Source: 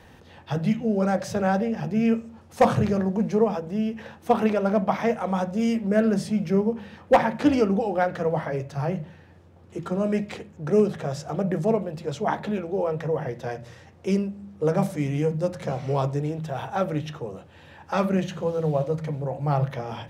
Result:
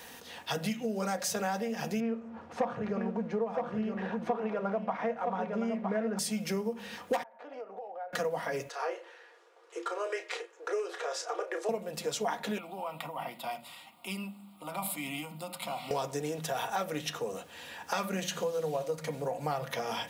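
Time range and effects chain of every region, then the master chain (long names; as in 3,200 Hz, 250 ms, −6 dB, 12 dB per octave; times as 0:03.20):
0:02.00–0:06.19: mu-law and A-law mismatch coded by mu + low-pass filter 1,600 Hz + single-tap delay 964 ms −7.5 dB
0:07.23–0:08.13: four-pole ladder band-pass 760 Hz, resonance 45% + downward compressor 5 to 1, threshold −40 dBFS
0:08.69–0:11.69: Chebyshev high-pass with heavy ripple 330 Hz, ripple 6 dB + high-frequency loss of the air 67 metres + double-tracking delay 32 ms −9 dB
0:12.58–0:15.91: high-pass filter 220 Hz + downward compressor 4 to 1, threshold −26 dBFS + phaser with its sweep stopped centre 1,700 Hz, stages 6
whole clip: RIAA equalisation recording; comb filter 4.2 ms, depth 40%; downward compressor 5 to 1, threshold −32 dBFS; level +2 dB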